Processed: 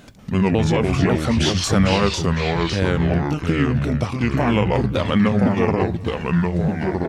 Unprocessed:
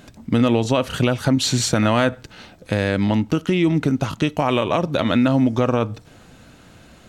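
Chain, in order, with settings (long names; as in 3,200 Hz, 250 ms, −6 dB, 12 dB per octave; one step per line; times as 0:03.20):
pitch shifter swept by a sawtooth −5.5 semitones, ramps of 546 ms
delay with pitch and tempo change per echo 189 ms, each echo −3 semitones, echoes 2
far-end echo of a speakerphone 390 ms, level −24 dB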